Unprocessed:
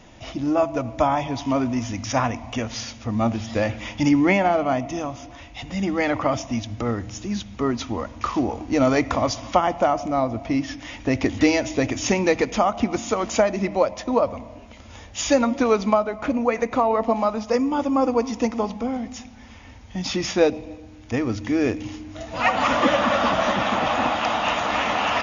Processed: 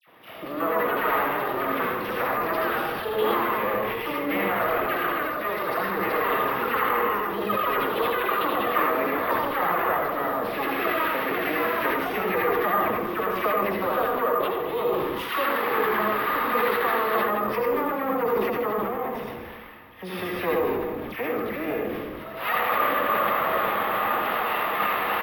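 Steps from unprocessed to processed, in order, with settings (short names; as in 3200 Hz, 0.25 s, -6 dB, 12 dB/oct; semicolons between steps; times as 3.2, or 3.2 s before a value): echoes that change speed 0.31 s, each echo +7 st, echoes 2; half-wave rectifier; dispersion lows, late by 76 ms, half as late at 1600 Hz; compressor 2.5:1, threshold -27 dBFS, peak gain reduction 9 dB; speaker cabinet 190–3300 Hz, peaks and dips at 250 Hz -7 dB, 480 Hz +6 dB, 1200 Hz +9 dB, 1900 Hz +4 dB; frequency-shifting echo 0.158 s, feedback 37%, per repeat -86 Hz, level -11 dB; reverb RT60 0.40 s, pre-delay 70 ms, DRR 0 dB; careless resampling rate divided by 3×, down filtered, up hold; sustainer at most 25 dB/s; gain -1.5 dB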